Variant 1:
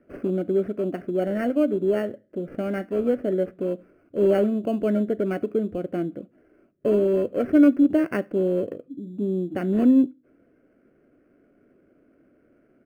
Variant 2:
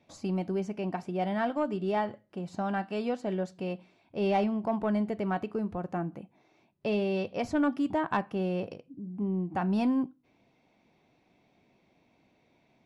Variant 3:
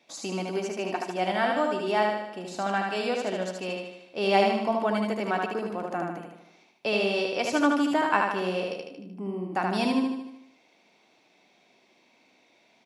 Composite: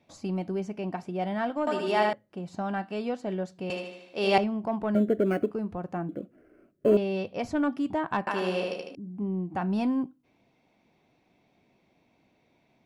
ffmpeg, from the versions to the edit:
-filter_complex "[2:a]asplit=3[s0][s1][s2];[0:a]asplit=2[s3][s4];[1:a]asplit=6[s5][s6][s7][s8][s9][s10];[s5]atrim=end=1.672[s11];[s0]atrim=start=1.668:end=2.132[s12];[s6]atrim=start=2.128:end=3.702[s13];[s1]atrim=start=3.698:end=4.382[s14];[s7]atrim=start=4.378:end=4.952[s15];[s3]atrim=start=4.948:end=5.512[s16];[s8]atrim=start=5.508:end=6.092[s17];[s4]atrim=start=6.088:end=6.972[s18];[s9]atrim=start=6.968:end=8.272[s19];[s2]atrim=start=8.268:end=8.952[s20];[s10]atrim=start=8.948[s21];[s11][s12]acrossfade=d=0.004:c1=hsin:c2=hsin[s22];[s22][s13]acrossfade=d=0.004:c1=hsin:c2=hsin[s23];[s23][s14]acrossfade=d=0.004:c1=hsin:c2=hsin[s24];[s24][s15]acrossfade=d=0.004:c1=hsin:c2=hsin[s25];[s25][s16]acrossfade=d=0.004:c1=hsin:c2=hsin[s26];[s26][s17]acrossfade=d=0.004:c1=hsin:c2=hsin[s27];[s27][s18]acrossfade=d=0.004:c1=hsin:c2=hsin[s28];[s28][s19]acrossfade=d=0.004:c1=hsin:c2=hsin[s29];[s29][s20]acrossfade=d=0.004:c1=hsin:c2=hsin[s30];[s30][s21]acrossfade=d=0.004:c1=hsin:c2=hsin"

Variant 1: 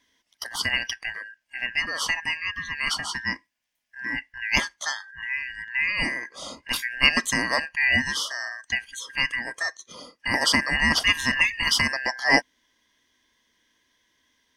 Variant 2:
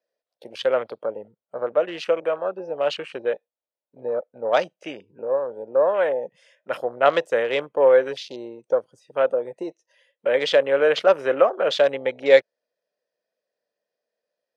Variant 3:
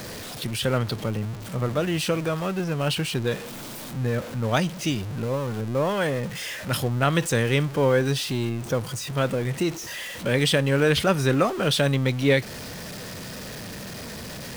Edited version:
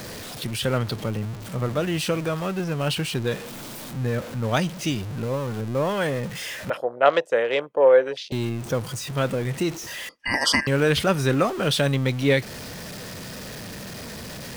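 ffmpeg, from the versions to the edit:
-filter_complex "[2:a]asplit=3[s0][s1][s2];[s0]atrim=end=6.702[s3];[1:a]atrim=start=6.698:end=8.322[s4];[s1]atrim=start=8.318:end=10.092[s5];[0:a]atrim=start=10.088:end=10.672[s6];[s2]atrim=start=10.668[s7];[s3][s4]acrossfade=d=0.004:c1=hsin:c2=hsin[s8];[s8][s5]acrossfade=d=0.004:c1=hsin:c2=hsin[s9];[s9][s6]acrossfade=d=0.004:c1=hsin:c2=hsin[s10];[s10][s7]acrossfade=d=0.004:c1=hsin:c2=hsin"

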